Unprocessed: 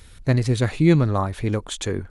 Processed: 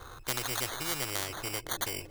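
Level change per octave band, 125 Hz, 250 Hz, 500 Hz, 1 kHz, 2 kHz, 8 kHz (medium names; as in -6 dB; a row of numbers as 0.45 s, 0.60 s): -24.5 dB, -23.5 dB, -16.0 dB, -8.5 dB, -4.5 dB, +1.5 dB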